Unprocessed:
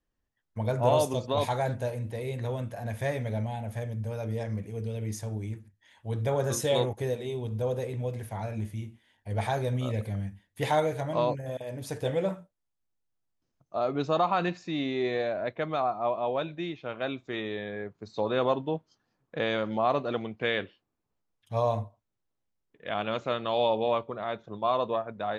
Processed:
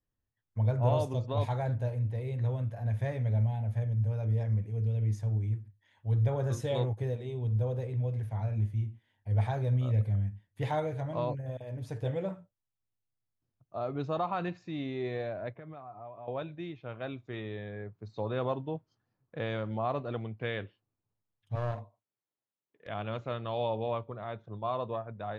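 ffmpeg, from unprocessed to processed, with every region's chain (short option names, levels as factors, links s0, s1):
-filter_complex "[0:a]asettb=1/sr,asplit=3[s0][s1][s2];[s0]atrim=end=15.504[s3];[s1]atrim=start=15.5:end=16.28,asetpts=PTS-STARTPTS,afade=t=in:d=0.004:c=qsin,afade=t=out:st=0.776:d=0.004:c=qsin,lowpass=2500,acompressor=threshold=0.0112:ratio=4:attack=3.2:release=140:knee=1:detection=peak,aecho=1:1:7:0.38,atrim=end_sample=34398[s4];[s2]atrim=start=16.276[s5];[s3][s4]acrossfade=d=0.004:c1=hsin:c2=qsin[s6];[s6][s5]acrossfade=d=0.004:c1=qsin:c2=hsin,asettb=1/sr,asplit=3[s7][s8][s9];[s7]atrim=end=21.554[s10];[s8]atrim=start=21.55:end=22.88,asetpts=PTS-STARTPTS,afade=t=in:d=0.004:c=qsin,afade=t=out:st=1.326:d=0.004:c=qsin,highpass=290,aeval=exprs='clip(val(0),-1,0.0158)':c=same[s11];[s9]atrim=start=22.876[s12];[s10][s11]acrossfade=d=0.004:c1=hsin:c2=qsin[s13];[s13][s12]acrossfade=d=0.004:c1=qsin:c2=hsin,lowpass=f=2800:p=1,equalizer=f=110:t=o:w=0.68:g=12.5,volume=0.473"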